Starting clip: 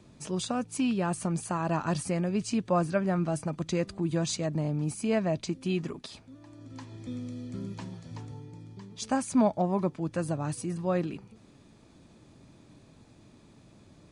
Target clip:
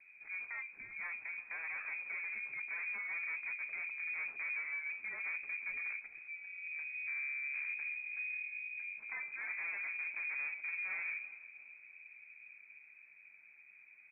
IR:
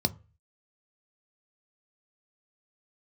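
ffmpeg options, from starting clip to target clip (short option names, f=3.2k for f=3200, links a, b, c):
-filter_complex "[0:a]bandreject=f=60:t=h:w=6,bandreject=f=120:t=h:w=6,bandreject=f=180:t=h:w=6,bandreject=f=240:t=h:w=6,bandreject=f=300:t=h:w=6,bandreject=f=360:t=h:w=6,bandreject=f=420:t=h:w=6,bandreject=f=480:t=h:w=6,bandreject=f=540:t=h:w=6,bandreject=f=600:t=h:w=6,afftfilt=real='re*lt(hypot(re,im),0.251)':imag='im*lt(hypot(re,im),0.251)':win_size=1024:overlap=0.75,equalizer=f=1.6k:t=o:w=1.7:g=-10,acrossover=split=440[a][b];[a]dynaudnorm=f=220:g=21:m=8dB[c];[c][b]amix=inputs=2:normalize=0,asoftclip=type=tanh:threshold=-34.5dB,lowpass=f=2.2k:t=q:w=0.5098,lowpass=f=2.2k:t=q:w=0.6013,lowpass=f=2.2k:t=q:w=0.9,lowpass=f=2.2k:t=q:w=2.563,afreqshift=-2600,equalizer=f=77:t=o:w=0.75:g=-12,asplit=2[d][e];[e]adelay=346,lowpass=f=930:p=1,volume=-14dB,asplit=2[f][g];[g]adelay=346,lowpass=f=930:p=1,volume=0.54,asplit=2[h][i];[i]adelay=346,lowpass=f=930:p=1,volume=0.54,asplit=2[j][k];[k]adelay=346,lowpass=f=930:p=1,volume=0.54,asplit=2[l][m];[m]adelay=346,lowpass=f=930:p=1,volume=0.54[n];[d][f][h][j][l][n]amix=inputs=6:normalize=0,flanger=delay=8.5:depth=1.8:regen=-68:speed=0.48:shape=sinusoidal,volume=1dB"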